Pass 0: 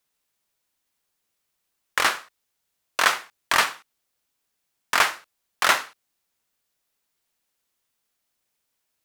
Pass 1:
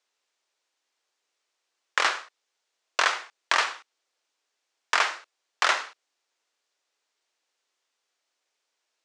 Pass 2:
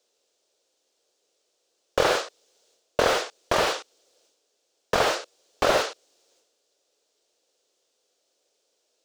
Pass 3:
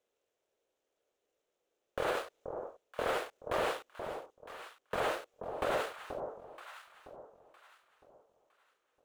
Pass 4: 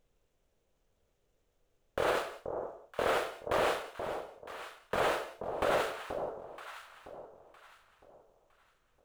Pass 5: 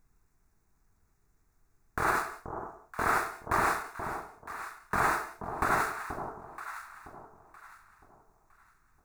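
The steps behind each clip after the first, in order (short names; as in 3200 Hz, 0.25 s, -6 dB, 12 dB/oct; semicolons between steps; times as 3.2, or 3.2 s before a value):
HPF 340 Hz 24 dB/oct; compressor 4:1, threshold -21 dBFS, peak gain reduction 7.5 dB; LPF 7100 Hz 24 dB/oct; gain +2 dB
transient shaper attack +4 dB, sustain +8 dB; graphic EQ 500/1000/2000 Hz +10/-9/-11 dB; slew limiter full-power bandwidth 65 Hz; gain +8.5 dB
median filter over 9 samples; limiter -16 dBFS, peak gain reduction 8.5 dB; on a send: echo with dull and thin repeats by turns 0.48 s, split 960 Hz, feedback 53%, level -6.5 dB; on the sum: gain -7 dB
on a send at -10.5 dB: reverb, pre-delay 3 ms; on the sum: added noise brown -78 dBFS; gain +3 dB
fixed phaser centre 1300 Hz, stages 4; gain +7.5 dB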